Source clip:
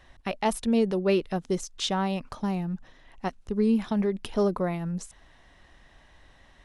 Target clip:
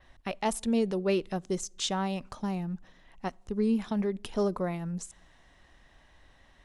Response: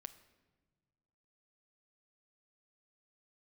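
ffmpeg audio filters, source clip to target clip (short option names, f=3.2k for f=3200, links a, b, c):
-filter_complex "[0:a]asplit=2[a][b];[1:a]atrim=start_sample=2205,asetrate=79380,aresample=44100[c];[b][c]afir=irnorm=-1:irlink=0,volume=-4dB[d];[a][d]amix=inputs=2:normalize=0,adynamicequalizer=threshold=0.002:dfrequency=7400:dqfactor=1.7:tfrequency=7400:tqfactor=1.7:attack=5:release=100:ratio=0.375:range=3.5:mode=boostabove:tftype=bell,volume=-5dB"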